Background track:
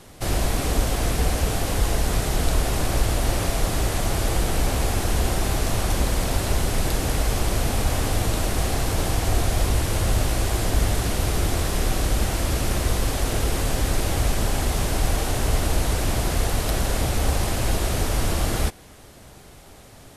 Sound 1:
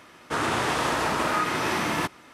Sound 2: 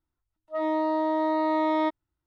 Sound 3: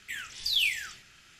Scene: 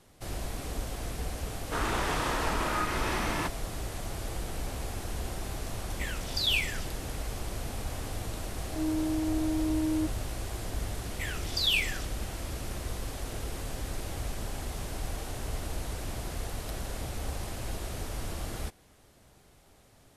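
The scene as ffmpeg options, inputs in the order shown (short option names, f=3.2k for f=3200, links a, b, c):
-filter_complex "[3:a]asplit=2[a][b];[0:a]volume=-13.5dB[c];[2:a]lowpass=f=230:t=q:w=4.9[d];[1:a]atrim=end=2.33,asetpts=PTS-STARTPTS,volume=-6dB,afade=t=in:d=0.004:c=hsin,afade=t=out:st=2.326:d=0.004:c=hsin,adelay=1410[e];[a]atrim=end=1.39,asetpts=PTS-STARTPTS,volume=-1.5dB,afade=t=in:d=0.004:c=hsin,afade=t=out:st=1.386:d=0.004:c=hsin,adelay=5910[f];[d]atrim=end=2.26,asetpts=PTS-STARTPTS,volume=-1.5dB,afade=t=in:d=0.004:c=hsin,afade=t=out:st=2.256:d=0.004:c=hsin,adelay=8170[g];[b]atrim=end=1.39,asetpts=PTS-STARTPTS,volume=-0.5dB,afade=t=in:d=0.004:c=hsin,afade=t=out:st=1.386:d=0.004:c=hsin,adelay=11110[h];[c][e][f][g][h]amix=inputs=5:normalize=0"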